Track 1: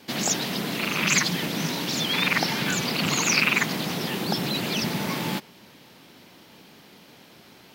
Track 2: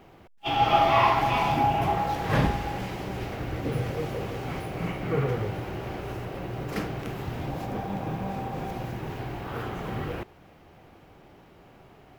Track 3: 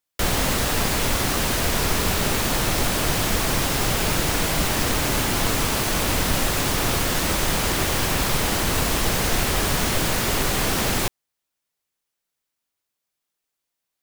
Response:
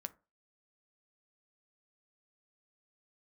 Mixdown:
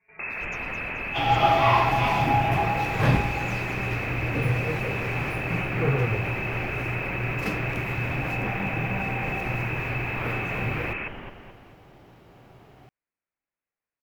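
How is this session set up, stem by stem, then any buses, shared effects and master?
−10.0 dB, 0.00 s, bus A, no send, echo send −8 dB, gate pattern "xxx.xxxxx.xx" 199 BPM −24 dB; stiff-string resonator 97 Hz, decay 0.31 s, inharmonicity 0.008
+0.5 dB, 0.70 s, no bus, no send, no echo send, parametric band 120 Hz +6.5 dB 0.29 octaves
−4.5 dB, 0.00 s, bus A, no send, echo send −11 dB, Chebyshev low-pass filter 3,000 Hz, order 6
bus A: 0.0 dB, voice inversion scrambler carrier 2,600 Hz; brickwall limiter −24.5 dBFS, peak gain reduction 11 dB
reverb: not used
echo: repeating echo 215 ms, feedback 44%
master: no processing

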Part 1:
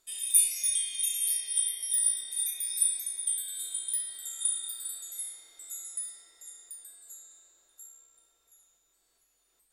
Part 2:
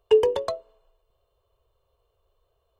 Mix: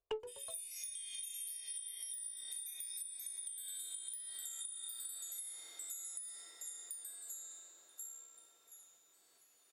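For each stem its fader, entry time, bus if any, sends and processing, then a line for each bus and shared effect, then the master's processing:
+3.0 dB, 0.20 s, no send, high-pass filter 180 Hz 12 dB per octave; downward compressor, threshold −37 dBFS, peak gain reduction 18 dB
+2.0 dB, 0.00 s, no send, one-sided soft clipper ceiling −12 dBFS; expander for the loud parts 2.5 to 1, over −31 dBFS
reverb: not used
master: downward compressor 4 to 1, threshold −44 dBFS, peak gain reduction 25 dB

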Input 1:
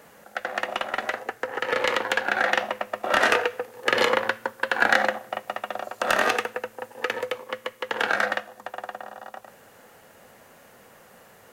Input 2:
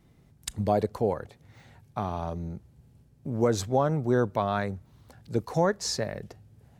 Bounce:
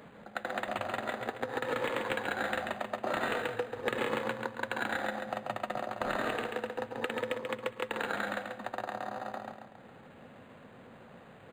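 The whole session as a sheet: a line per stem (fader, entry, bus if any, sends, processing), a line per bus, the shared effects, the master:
−0.5 dB, 0.00 s, no send, echo send −5 dB, downward expander −43 dBFS; downward compressor 4 to 1, threshold −32 dBFS, peak gain reduction 15.5 dB
−11.0 dB, 0.20 s, no send, no echo send, downward compressor, threshold −32 dBFS, peak gain reduction 13 dB; guitar amp tone stack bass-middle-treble 10-0-10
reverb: not used
echo: repeating echo 137 ms, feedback 41%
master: octave-band graphic EQ 125/250/4,000 Hz +9/+7/+4 dB; upward compression, threshold −43 dBFS; linearly interpolated sample-rate reduction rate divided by 8×

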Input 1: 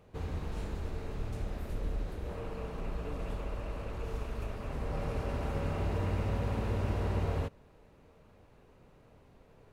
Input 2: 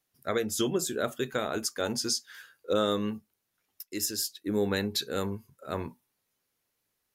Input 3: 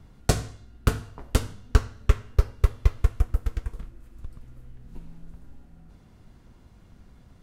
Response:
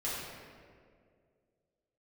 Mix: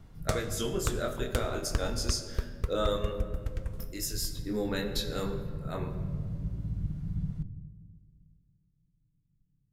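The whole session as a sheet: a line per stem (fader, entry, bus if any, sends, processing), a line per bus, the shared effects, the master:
+2.0 dB, 0.00 s, send −11.5 dB, lower of the sound and its delayed copy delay 6.6 ms; inverse Chebyshev low-pass filter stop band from 670 Hz, stop band 60 dB; expander for the loud parts 1.5 to 1, over −56 dBFS
−2.5 dB, 0.00 s, send −9 dB, chorus effect 0.28 Hz, delay 20 ms, depth 5.4 ms
−2.5 dB, 0.00 s, send −21 dB, downward compressor 6 to 1, threshold −25 dBFS, peak gain reduction 14.5 dB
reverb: on, RT60 2.1 s, pre-delay 3 ms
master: no processing

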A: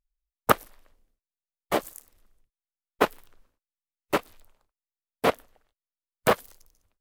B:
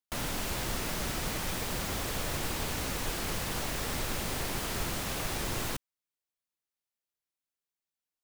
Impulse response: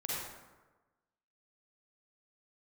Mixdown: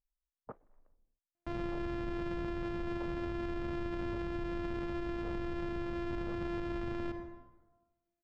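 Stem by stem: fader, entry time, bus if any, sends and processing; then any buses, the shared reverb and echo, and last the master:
−7.5 dB, 0.00 s, no send, low-pass filter 1,100 Hz 12 dB per octave; downward compressor 4 to 1, threshold −30 dBFS, peak gain reduction 13 dB; brickwall limiter −25 dBFS, peak gain reduction 8 dB
+0.5 dB, 1.35 s, send −11 dB, samples sorted by size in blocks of 128 samples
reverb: on, RT60 1.2 s, pre-delay 38 ms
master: head-to-tape spacing loss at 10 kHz 36 dB; brickwall limiter −30.5 dBFS, peak gain reduction 8.5 dB

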